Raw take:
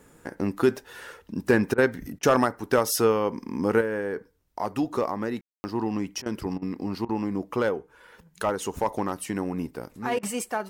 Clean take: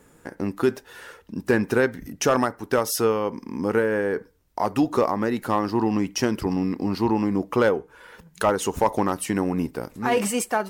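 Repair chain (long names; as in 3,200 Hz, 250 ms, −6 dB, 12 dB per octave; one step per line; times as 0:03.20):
ambience match 0:05.41–0:05.64
repair the gap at 0:01.74/0:02.19/0:06.22/0:06.58/0:07.05/0:10.19, 39 ms
level correction +5.5 dB, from 0:03.81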